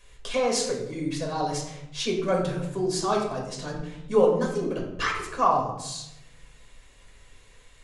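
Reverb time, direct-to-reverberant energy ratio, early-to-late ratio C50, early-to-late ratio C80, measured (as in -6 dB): 0.85 s, -2.0 dB, 5.0 dB, 7.5 dB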